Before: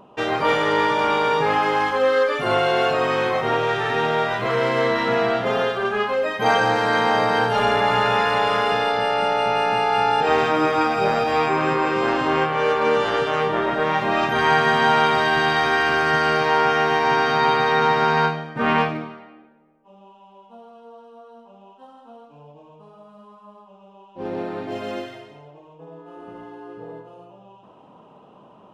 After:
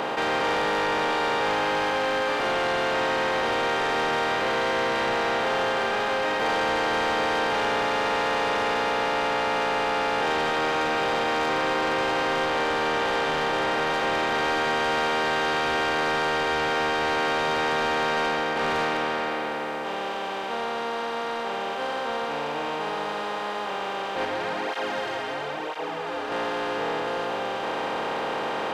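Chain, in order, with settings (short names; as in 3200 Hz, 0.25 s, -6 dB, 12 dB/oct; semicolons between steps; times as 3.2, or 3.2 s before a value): per-bin compression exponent 0.2; HPF 310 Hz 6 dB/oct; soft clip -11 dBFS, distortion -12 dB; 24.25–26.32 tape flanging out of phase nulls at 1 Hz, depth 6 ms; gain -8.5 dB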